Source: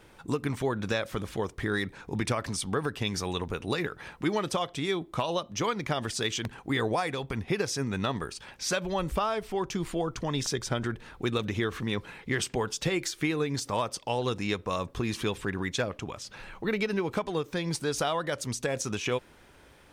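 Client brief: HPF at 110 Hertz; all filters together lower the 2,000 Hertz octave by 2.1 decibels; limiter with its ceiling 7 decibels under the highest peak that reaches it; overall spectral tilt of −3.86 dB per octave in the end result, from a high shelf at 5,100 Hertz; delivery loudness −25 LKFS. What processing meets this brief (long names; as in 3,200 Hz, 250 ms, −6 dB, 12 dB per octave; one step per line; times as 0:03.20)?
high-pass filter 110 Hz
parametric band 2,000 Hz −3.5 dB
high-shelf EQ 5,100 Hz +6 dB
level +7.5 dB
brickwall limiter −13 dBFS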